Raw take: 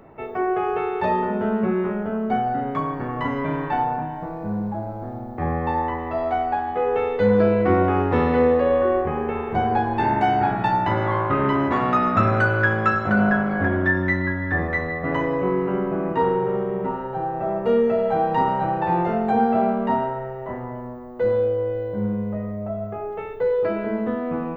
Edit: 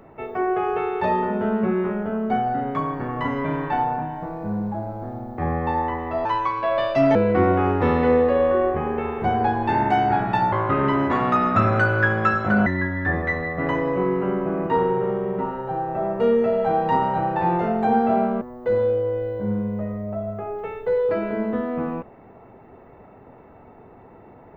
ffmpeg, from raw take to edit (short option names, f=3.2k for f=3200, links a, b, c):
-filter_complex "[0:a]asplit=6[a][b][c][d][e][f];[a]atrim=end=6.254[g];[b]atrim=start=6.25:end=7.46,asetpts=PTS-STARTPTS,asetrate=59094,aresample=44100[h];[c]atrim=start=7.456:end=10.832[i];[d]atrim=start=11.128:end=13.272[j];[e]atrim=start=14.118:end=19.872[k];[f]atrim=start=20.948[l];[g][h]acrossfade=d=0.004:c1=hsin:c2=hsin[m];[m][i]acrossfade=d=0.004:c1=hsin:c2=hsin[n];[n][j]acrossfade=d=0.004:c1=hsin:c2=hsin[o];[o][k]acrossfade=d=0.004:c1=hsin:c2=hsin[p];[p][l]acrossfade=d=0.004:c1=hsin:c2=hsin"